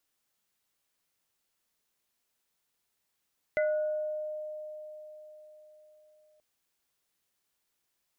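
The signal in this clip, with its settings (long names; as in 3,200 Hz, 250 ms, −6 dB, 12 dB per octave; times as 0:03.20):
inharmonic partials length 2.83 s, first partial 612 Hz, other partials 1,460/2,030 Hz, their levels −10/−5 dB, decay 4.38 s, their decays 0.94/0.22 s, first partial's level −24 dB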